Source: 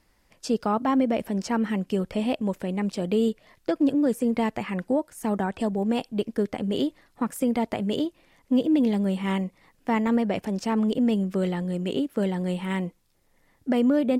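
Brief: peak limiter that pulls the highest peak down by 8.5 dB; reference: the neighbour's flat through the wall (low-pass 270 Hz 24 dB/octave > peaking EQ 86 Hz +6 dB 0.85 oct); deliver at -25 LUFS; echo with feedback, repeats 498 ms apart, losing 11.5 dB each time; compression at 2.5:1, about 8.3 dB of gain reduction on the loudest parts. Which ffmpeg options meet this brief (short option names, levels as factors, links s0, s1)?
-af "acompressor=threshold=0.0282:ratio=2.5,alimiter=level_in=1.33:limit=0.0631:level=0:latency=1,volume=0.75,lowpass=f=270:w=0.5412,lowpass=f=270:w=1.3066,equalizer=f=86:t=o:w=0.85:g=6,aecho=1:1:498|996|1494:0.266|0.0718|0.0194,volume=3.76"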